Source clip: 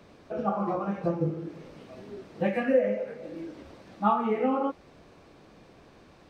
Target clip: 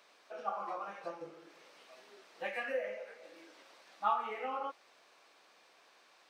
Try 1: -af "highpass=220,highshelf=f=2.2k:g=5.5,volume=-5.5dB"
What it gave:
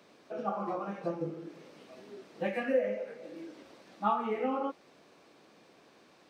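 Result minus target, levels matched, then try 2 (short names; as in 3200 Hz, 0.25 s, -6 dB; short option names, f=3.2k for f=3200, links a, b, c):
250 Hz band +13.0 dB
-af "highpass=810,highshelf=f=2.2k:g=5.5,volume=-5.5dB"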